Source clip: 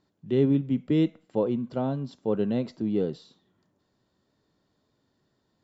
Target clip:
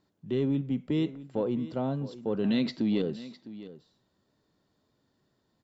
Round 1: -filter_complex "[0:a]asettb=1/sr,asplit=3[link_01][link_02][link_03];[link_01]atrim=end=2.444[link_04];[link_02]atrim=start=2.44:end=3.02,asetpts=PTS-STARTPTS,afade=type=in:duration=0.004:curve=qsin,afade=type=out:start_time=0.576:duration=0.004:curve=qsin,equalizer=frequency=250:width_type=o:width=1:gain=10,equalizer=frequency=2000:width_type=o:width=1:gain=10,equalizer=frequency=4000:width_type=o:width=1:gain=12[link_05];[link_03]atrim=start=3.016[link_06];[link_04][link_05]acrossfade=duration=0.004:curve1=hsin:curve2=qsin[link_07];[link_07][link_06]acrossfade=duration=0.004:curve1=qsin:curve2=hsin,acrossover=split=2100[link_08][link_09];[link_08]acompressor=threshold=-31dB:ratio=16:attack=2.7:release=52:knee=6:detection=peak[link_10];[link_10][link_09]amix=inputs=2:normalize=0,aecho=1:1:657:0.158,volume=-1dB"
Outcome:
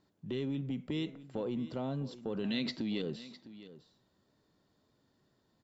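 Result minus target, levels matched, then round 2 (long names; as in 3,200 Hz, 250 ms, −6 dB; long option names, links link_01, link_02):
downward compressor: peak gain reduction +9 dB
-filter_complex "[0:a]asettb=1/sr,asplit=3[link_01][link_02][link_03];[link_01]atrim=end=2.444[link_04];[link_02]atrim=start=2.44:end=3.02,asetpts=PTS-STARTPTS,afade=type=in:duration=0.004:curve=qsin,afade=type=out:start_time=0.576:duration=0.004:curve=qsin,equalizer=frequency=250:width_type=o:width=1:gain=10,equalizer=frequency=2000:width_type=o:width=1:gain=10,equalizer=frequency=4000:width_type=o:width=1:gain=12[link_05];[link_03]atrim=start=3.016[link_06];[link_04][link_05]acrossfade=duration=0.004:curve1=hsin:curve2=qsin[link_07];[link_07][link_06]acrossfade=duration=0.004:curve1=qsin:curve2=hsin,acrossover=split=2100[link_08][link_09];[link_08]acompressor=threshold=-21.5dB:ratio=16:attack=2.7:release=52:knee=6:detection=peak[link_10];[link_10][link_09]amix=inputs=2:normalize=0,aecho=1:1:657:0.158,volume=-1dB"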